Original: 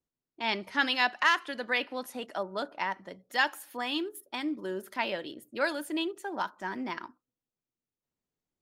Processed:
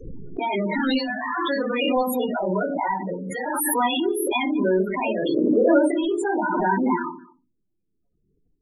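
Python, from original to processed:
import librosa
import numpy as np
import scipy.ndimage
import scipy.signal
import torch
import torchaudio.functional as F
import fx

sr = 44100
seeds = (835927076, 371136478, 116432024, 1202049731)

y = fx.spec_quant(x, sr, step_db=15)
y = fx.over_compress(y, sr, threshold_db=-34.0, ratio=-0.5)
y = fx.doubler(y, sr, ms=19.0, db=-2, at=(0.78, 1.29))
y = fx.lowpass(y, sr, hz=2100.0, slope=12, at=(2.3, 2.94))
y = fx.peak_eq(y, sr, hz=460.0, db=10.5, octaves=1.5, at=(5.32, 5.83), fade=0.02)
y = y + 10.0 ** (-22.0 / 20.0) * np.pad(y, (int(209 * sr / 1000.0), 0))[:len(y)]
y = fx.room_shoebox(y, sr, seeds[0], volume_m3=130.0, walls='furnished', distance_m=4.7)
y = fx.spec_topn(y, sr, count=16)
y = fx.pre_swell(y, sr, db_per_s=21.0)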